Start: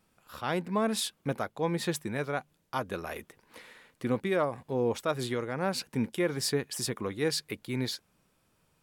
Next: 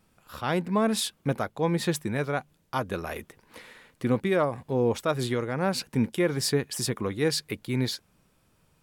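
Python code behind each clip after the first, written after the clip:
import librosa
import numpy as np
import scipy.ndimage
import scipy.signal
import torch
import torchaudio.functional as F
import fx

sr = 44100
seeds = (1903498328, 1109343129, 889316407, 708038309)

y = fx.low_shelf(x, sr, hz=170.0, db=5.5)
y = y * librosa.db_to_amplitude(3.0)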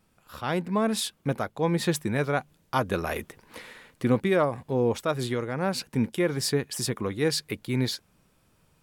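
y = fx.rider(x, sr, range_db=10, speed_s=2.0)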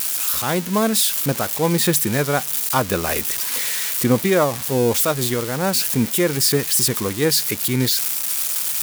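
y = x + 0.5 * 10.0 ** (-19.5 / 20.0) * np.diff(np.sign(x), prepend=np.sign(x[:1]))
y = y * librosa.db_to_amplitude(6.0)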